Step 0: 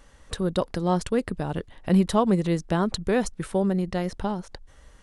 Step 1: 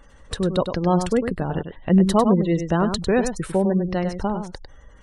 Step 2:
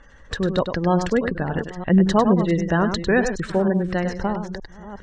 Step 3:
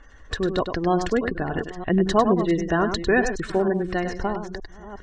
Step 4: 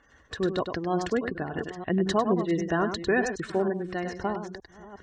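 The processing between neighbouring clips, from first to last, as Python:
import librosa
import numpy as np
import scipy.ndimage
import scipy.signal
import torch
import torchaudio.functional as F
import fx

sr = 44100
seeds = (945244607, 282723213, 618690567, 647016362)

y1 = fx.spec_gate(x, sr, threshold_db=-30, keep='strong')
y1 = y1 + 10.0 ** (-8.0 / 20.0) * np.pad(y1, (int(100 * sr / 1000.0), 0))[:len(y1)]
y1 = F.gain(torch.from_numpy(y1), 3.5).numpy()
y2 = fx.reverse_delay(y1, sr, ms=460, wet_db=-13)
y2 = scipy.signal.sosfilt(scipy.signal.butter(6, 7200.0, 'lowpass', fs=sr, output='sos'), y2)
y2 = fx.peak_eq(y2, sr, hz=1700.0, db=9.0, octaves=0.36)
y3 = y2 + 0.43 * np.pad(y2, (int(2.8 * sr / 1000.0), 0))[:len(y2)]
y3 = F.gain(torch.from_numpy(y3), -1.5).numpy()
y4 = scipy.signal.sosfilt(scipy.signal.butter(2, 86.0, 'highpass', fs=sr, output='sos'), y3)
y4 = fx.am_noise(y4, sr, seeds[0], hz=5.7, depth_pct=55)
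y4 = F.gain(torch.from_numpy(y4), -1.5).numpy()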